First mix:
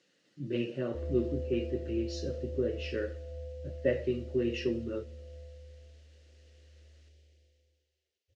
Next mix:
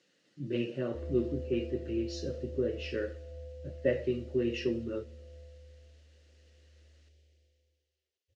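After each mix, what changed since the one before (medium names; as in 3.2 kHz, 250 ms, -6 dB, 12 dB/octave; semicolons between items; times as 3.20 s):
background -3.0 dB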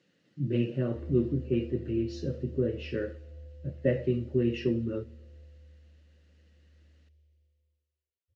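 background -10.5 dB; master: add tone controls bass +11 dB, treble -7 dB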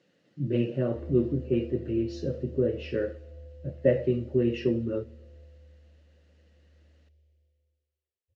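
master: add peaking EQ 640 Hz +6.5 dB 1.3 oct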